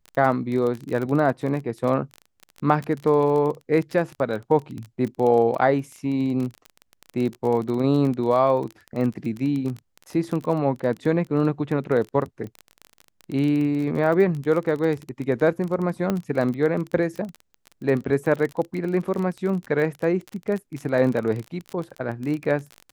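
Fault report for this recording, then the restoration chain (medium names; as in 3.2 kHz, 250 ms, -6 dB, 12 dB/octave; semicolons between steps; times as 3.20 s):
crackle 27 per s -27 dBFS
16.10 s: pop -11 dBFS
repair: de-click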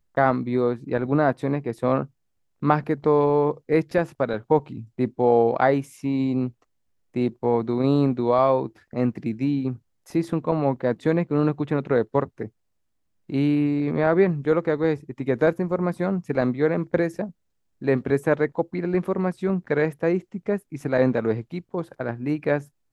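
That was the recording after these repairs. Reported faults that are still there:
nothing left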